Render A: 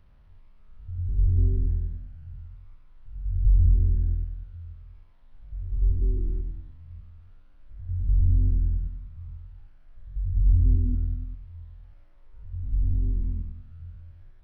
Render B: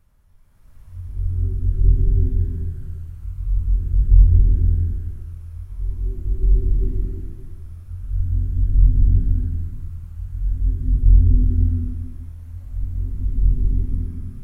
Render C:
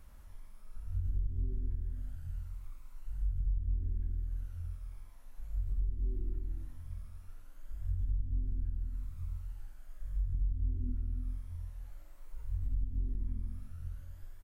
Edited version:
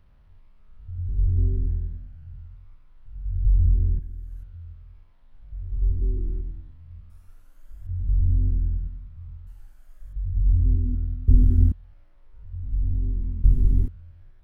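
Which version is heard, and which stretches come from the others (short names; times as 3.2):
A
3.99–4.43 from C
7.1–7.87 from C
9.47–10.13 from C
11.28–11.72 from B
13.44–13.88 from B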